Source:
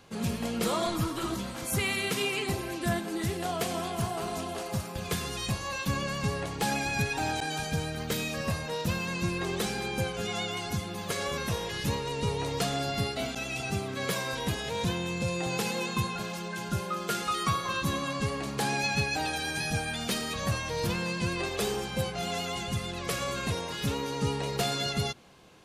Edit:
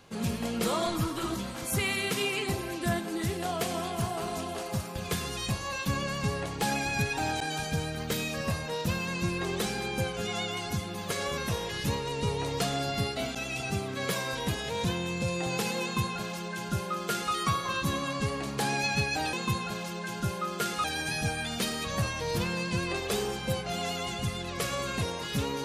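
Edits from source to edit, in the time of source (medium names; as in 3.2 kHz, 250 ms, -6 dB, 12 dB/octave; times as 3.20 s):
15.82–17.33 s: copy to 19.33 s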